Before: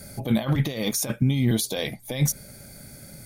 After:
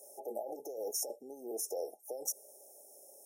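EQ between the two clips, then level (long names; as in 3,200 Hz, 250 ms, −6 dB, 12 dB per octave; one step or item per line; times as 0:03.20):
elliptic high-pass filter 400 Hz, stop band 80 dB
linear-phase brick-wall band-stop 870–5,200 Hz
parametric band 8,700 Hz −2.5 dB 2.3 octaves
−6.0 dB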